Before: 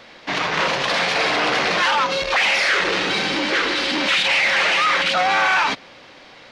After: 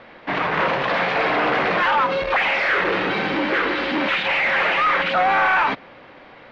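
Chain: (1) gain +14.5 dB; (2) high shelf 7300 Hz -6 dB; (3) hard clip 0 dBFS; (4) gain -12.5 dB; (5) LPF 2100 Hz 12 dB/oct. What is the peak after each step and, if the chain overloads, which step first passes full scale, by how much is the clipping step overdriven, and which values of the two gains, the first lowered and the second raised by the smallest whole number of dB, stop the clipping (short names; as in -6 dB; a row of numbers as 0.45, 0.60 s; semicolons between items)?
+5.5, +5.0, 0.0, -12.5, -12.0 dBFS; step 1, 5.0 dB; step 1 +9.5 dB, step 4 -7.5 dB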